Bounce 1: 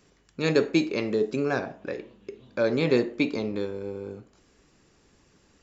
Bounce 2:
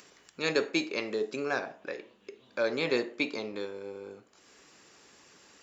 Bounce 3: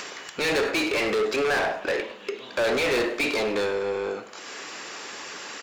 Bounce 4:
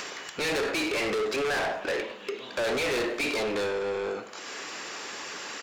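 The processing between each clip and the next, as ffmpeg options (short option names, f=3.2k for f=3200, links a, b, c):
-af "highpass=f=770:p=1,acompressor=mode=upward:threshold=-48dB:ratio=2.5"
-filter_complex "[0:a]asplit=2[a][b];[b]highpass=f=720:p=1,volume=33dB,asoftclip=type=tanh:threshold=-13dB[c];[a][c]amix=inputs=2:normalize=0,lowpass=f=3.5k:p=1,volume=-6dB,aecho=1:1:102|204|306:0.158|0.0539|0.0183,volume=-3dB"
-af "asoftclip=type=tanh:threshold=-25dB"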